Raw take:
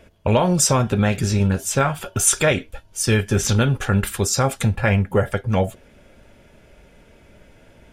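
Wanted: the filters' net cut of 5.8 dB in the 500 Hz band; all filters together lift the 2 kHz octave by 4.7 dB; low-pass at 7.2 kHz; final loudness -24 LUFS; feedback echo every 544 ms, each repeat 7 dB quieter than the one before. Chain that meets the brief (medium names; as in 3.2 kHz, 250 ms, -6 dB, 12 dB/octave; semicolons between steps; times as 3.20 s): low-pass 7.2 kHz; peaking EQ 500 Hz -7.5 dB; peaking EQ 2 kHz +6.5 dB; feedback delay 544 ms, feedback 45%, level -7 dB; trim -4.5 dB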